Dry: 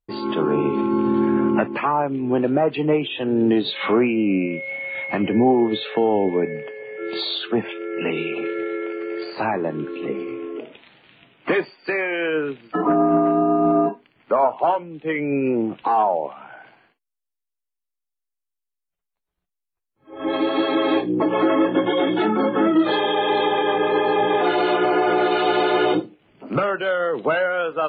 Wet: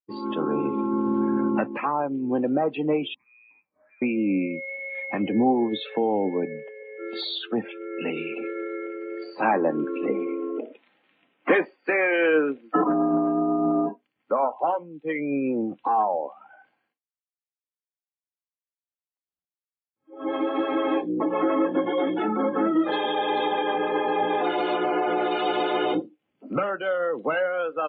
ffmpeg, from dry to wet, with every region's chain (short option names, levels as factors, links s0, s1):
-filter_complex "[0:a]asettb=1/sr,asplit=3[s0][s1][s2];[s0]atrim=end=3.144[s3];[s1]atrim=start=3.14:end=4.02,asetpts=PTS-STARTPTS,afade=t=in:d=0.004:c=qsin,afade=t=out:st=0.876:d=0.004:c=qsin,aderivative,acompressor=threshold=0.00891:ratio=16:attack=3.2:release=140:knee=1:detection=peak,lowpass=f=2400:t=q:w=0.5098,lowpass=f=2400:t=q:w=0.6013,lowpass=f=2400:t=q:w=0.9,lowpass=f=2400:t=q:w=2.563,afreqshift=-2800[s4];[s2]atrim=start=4.016[s5];[s3][s4]acrossfade=d=0.004:c1=hsin:c2=qsin[s6];[s6][s5]acrossfade=d=0.004:c1=qsin:c2=hsin,asettb=1/sr,asplit=3[s7][s8][s9];[s7]atrim=end=9.424[s10];[s8]atrim=start=9.42:end=12.84,asetpts=PTS-STARTPTS,afade=t=in:d=0.004:c=qsin,afade=t=out:st=3.416:d=0.004:c=qsin,acontrast=87,highpass=220,lowpass=2700[s11];[s9]atrim=start=12.836[s12];[s10][s11]acrossfade=d=0.004:c1=hsin:c2=qsin[s13];[s13][s12]acrossfade=d=0.004:c1=qsin:c2=hsin,asettb=1/sr,asplit=3[s14][s15][s16];[s14]atrim=end=20.244[s17];[s15]atrim=start=20.24:end=22.92,asetpts=PTS-STARTPTS,afade=t=in:d=0.004:c=qsin,afade=t=out:st=2.676:d=0.004:c=qsin,lowshelf=f=97:g=-8.5,acrossover=split=3300[s18][s19];[s19]acompressor=threshold=0.00316:ratio=4:attack=1:release=60[s20];[s18][s20]amix=inputs=2:normalize=0[s21];[s16]atrim=start=22.916[s22];[s17][s21]acrossfade=d=0.004:c1=hsin:c2=qsin[s23];[s23][s22]acrossfade=d=0.004:c1=qsin:c2=hsin,afftdn=nr=14:nf=-31,highpass=100,aecho=1:1:3.8:0.32,volume=0.562"